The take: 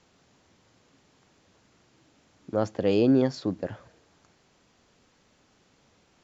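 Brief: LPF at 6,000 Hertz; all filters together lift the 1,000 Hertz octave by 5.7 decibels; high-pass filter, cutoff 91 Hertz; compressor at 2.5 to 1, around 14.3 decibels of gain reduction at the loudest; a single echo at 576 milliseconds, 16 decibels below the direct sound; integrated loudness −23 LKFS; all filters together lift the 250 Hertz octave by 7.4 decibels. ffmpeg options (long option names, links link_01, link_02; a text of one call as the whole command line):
ffmpeg -i in.wav -af "highpass=91,lowpass=6000,equalizer=frequency=250:width_type=o:gain=8,equalizer=frequency=1000:width_type=o:gain=7.5,acompressor=threshold=-32dB:ratio=2.5,aecho=1:1:576:0.158,volume=9.5dB" out.wav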